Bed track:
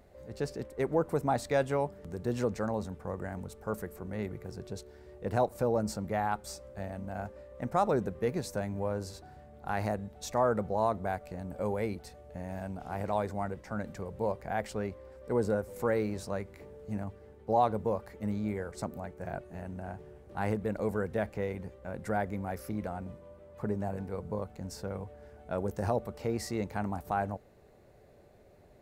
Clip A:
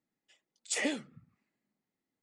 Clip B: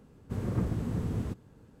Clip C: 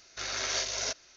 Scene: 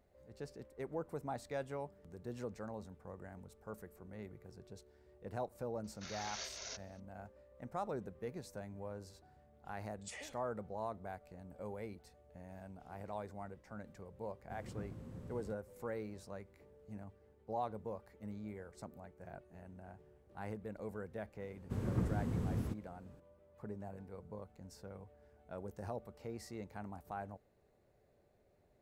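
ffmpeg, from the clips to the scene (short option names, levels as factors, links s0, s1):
-filter_complex "[2:a]asplit=2[s0][s1];[0:a]volume=0.224[s2];[1:a]highpass=520[s3];[3:a]atrim=end=1.16,asetpts=PTS-STARTPTS,volume=0.2,afade=t=in:d=0.004:c=hsin,afade=t=out:st=1.156:d=0.004:c=hsin,adelay=5840[s4];[s3]atrim=end=2.22,asetpts=PTS-STARTPTS,volume=0.168,afade=t=in:d=0.004:c=hsin,afade=t=out:st=2.216:d=0.004:c=hsin,adelay=9360[s5];[s0]atrim=end=1.8,asetpts=PTS-STARTPTS,volume=0.133,afade=t=in:d=0.004:c=hsin,afade=t=out:st=1.796:d=0.004:c=hsin,adelay=14200[s6];[s1]atrim=end=1.8,asetpts=PTS-STARTPTS,volume=0.562,afade=t=in:d=0.004:c=hsin,afade=t=out:st=1.796:d=0.004:c=hsin,adelay=21400[s7];[s2][s4][s5][s6][s7]amix=inputs=5:normalize=0"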